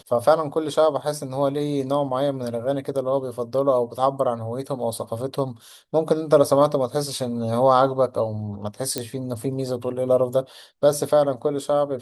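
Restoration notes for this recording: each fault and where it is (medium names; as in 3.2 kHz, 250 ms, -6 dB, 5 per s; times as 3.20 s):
8.98 s: pop -9 dBFS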